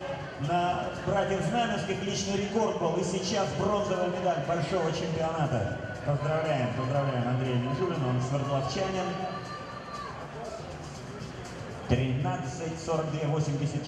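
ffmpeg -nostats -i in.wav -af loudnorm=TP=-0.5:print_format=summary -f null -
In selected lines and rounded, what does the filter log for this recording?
Input Integrated:    -30.5 LUFS
Input True Peak:     -12.2 dBTP
Input LRA:             4.6 LU
Input Threshold:     -40.5 LUFS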